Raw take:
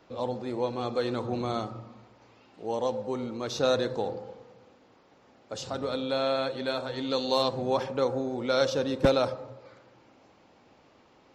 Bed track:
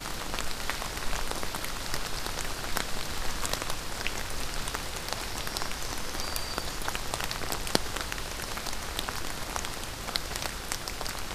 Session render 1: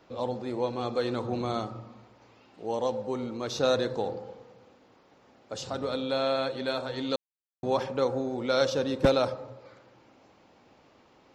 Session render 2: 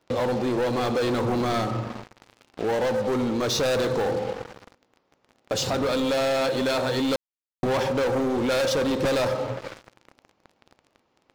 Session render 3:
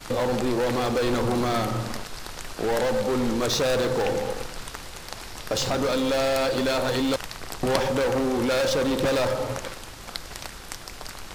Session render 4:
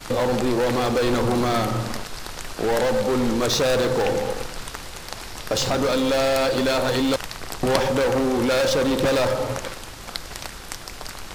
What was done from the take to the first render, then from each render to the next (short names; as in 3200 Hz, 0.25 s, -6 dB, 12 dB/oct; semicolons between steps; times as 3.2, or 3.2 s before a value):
7.16–7.63 mute
sample leveller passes 5; compressor 2.5:1, threshold -26 dBFS, peak gain reduction 8 dB
add bed track -3.5 dB
gain +3 dB